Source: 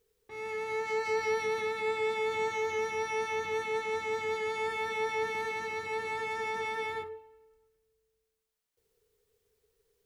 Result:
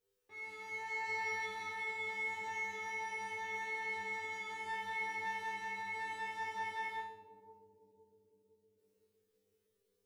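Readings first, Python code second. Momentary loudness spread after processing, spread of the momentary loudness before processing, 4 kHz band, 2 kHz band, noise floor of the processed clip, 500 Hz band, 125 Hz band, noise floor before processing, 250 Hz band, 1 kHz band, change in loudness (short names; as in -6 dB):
7 LU, 6 LU, -8.0 dB, -3.5 dB, -81 dBFS, -19.0 dB, -9.5 dB, -81 dBFS, -8.0 dB, -5.5 dB, -7.0 dB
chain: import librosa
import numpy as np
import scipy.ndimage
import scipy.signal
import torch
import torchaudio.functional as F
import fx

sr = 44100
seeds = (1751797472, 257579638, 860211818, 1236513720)

y = fx.low_shelf(x, sr, hz=210.0, db=-7.0)
y = fx.comb_fb(y, sr, f0_hz=99.0, decay_s=0.58, harmonics='all', damping=0.0, mix_pct=100)
y = fx.echo_bbd(y, sr, ms=511, stages=2048, feedback_pct=62, wet_db=-7.5)
y = y * 10.0 ** (5.5 / 20.0)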